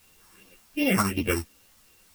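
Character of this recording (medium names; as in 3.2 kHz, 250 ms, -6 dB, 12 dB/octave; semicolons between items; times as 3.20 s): a buzz of ramps at a fixed pitch in blocks of 16 samples; phasing stages 4, 2.7 Hz, lowest notch 470–1400 Hz; a quantiser's noise floor 10-bit, dither triangular; a shimmering, thickened sound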